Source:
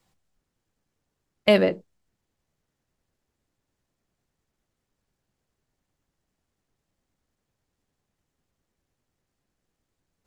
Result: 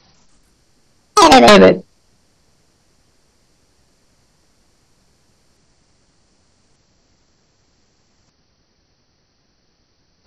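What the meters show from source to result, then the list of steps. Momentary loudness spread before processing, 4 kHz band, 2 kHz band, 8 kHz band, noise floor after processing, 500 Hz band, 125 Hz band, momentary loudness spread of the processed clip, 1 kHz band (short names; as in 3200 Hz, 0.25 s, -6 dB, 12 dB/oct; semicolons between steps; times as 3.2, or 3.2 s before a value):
12 LU, +16.5 dB, +15.5 dB, n/a, -62 dBFS, +13.0 dB, +14.0 dB, 13 LU, +28.5 dB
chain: nonlinear frequency compression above 4000 Hz 4:1; echoes that change speed 0.144 s, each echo +4 st, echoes 3; sine folder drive 11 dB, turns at -4 dBFS; gain +2.5 dB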